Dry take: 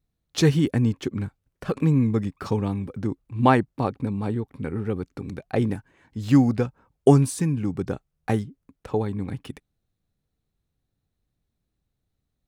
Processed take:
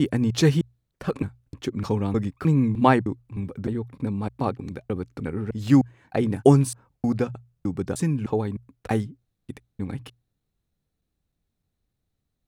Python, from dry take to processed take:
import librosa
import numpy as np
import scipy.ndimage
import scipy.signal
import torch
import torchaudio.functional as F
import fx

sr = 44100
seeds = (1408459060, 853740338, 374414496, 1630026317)

y = fx.block_reorder(x, sr, ms=306.0, group=3)
y = fx.hum_notches(y, sr, base_hz=60, count=2)